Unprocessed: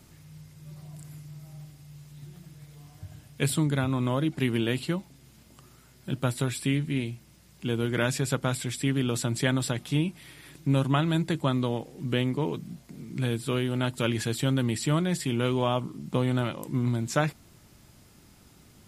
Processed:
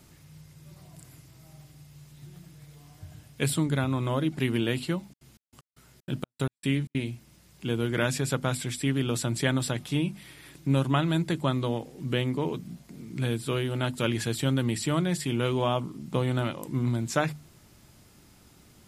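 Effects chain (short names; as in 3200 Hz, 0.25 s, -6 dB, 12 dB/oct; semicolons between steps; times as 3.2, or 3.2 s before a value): notches 50/100/150/200/250 Hz; 4.94–7.01 step gate "xx..x..xxx." 190 bpm -60 dB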